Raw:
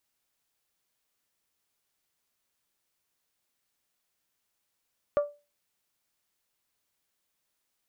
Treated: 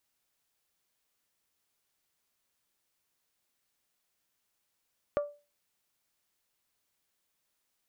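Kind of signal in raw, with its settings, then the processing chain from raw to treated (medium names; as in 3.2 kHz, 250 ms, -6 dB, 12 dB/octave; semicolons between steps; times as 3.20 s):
glass hit bell, lowest mode 583 Hz, decay 0.29 s, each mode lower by 11 dB, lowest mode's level -18 dB
compression 4:1, threshold -29 dBFS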